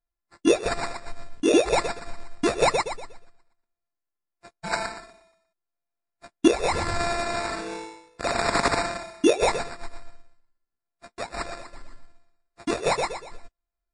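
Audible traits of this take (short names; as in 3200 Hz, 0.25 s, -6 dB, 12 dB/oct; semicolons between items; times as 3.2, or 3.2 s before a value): a buzz of ramps at a fixed pitch in blocks of 8 samples; phasing stages 2, 0.78 Hz, lowest notch 340–4800 Hz; aliases and images of a low sample rate 3100 Hz, jitter 0%; MP3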